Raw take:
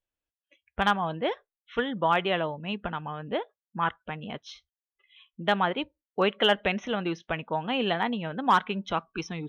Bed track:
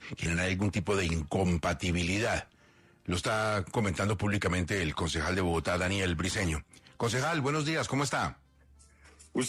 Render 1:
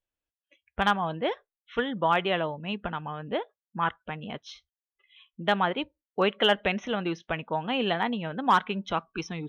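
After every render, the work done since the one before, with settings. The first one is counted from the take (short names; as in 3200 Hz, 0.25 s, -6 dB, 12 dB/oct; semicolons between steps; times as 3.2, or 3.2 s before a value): nothing audible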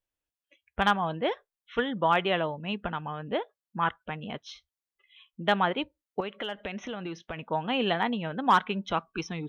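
6.2–7.51 compressor 5:1, threshold -32 dBFS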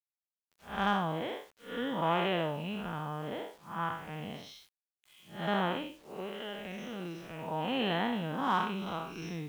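time blur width 0.185 s; bit-crush 10-bit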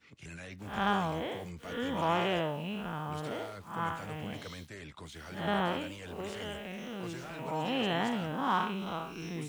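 add bed track -16 dB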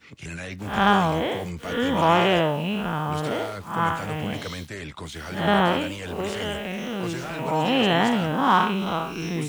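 gain +11 dB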